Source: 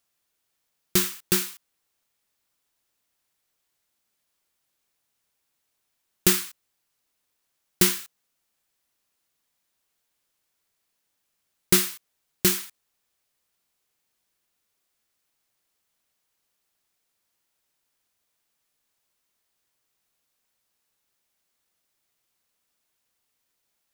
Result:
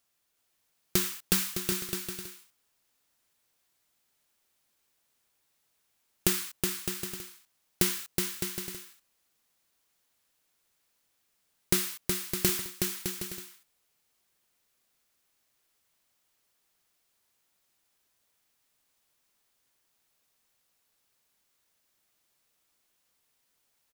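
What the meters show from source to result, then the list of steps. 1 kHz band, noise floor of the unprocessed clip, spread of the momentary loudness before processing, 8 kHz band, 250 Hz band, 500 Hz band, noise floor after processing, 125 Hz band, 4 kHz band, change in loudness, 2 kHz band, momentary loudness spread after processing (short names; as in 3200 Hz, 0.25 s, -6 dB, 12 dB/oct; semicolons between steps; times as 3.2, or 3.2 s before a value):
-3.5 dB, -77 dBFS, 12 LU, -4.0 dB, -4.0 dB, -4.0 dB, -75 dBFS, -3.0 dB, -4.0 dB, -7.0 dB, -4.0 dB, 13 LU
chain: compressor 4:1, threshold -23 dBFS, peak gain reduction 9 dB; bouncing-ball echo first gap 0.37 s, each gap 0.65×, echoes 5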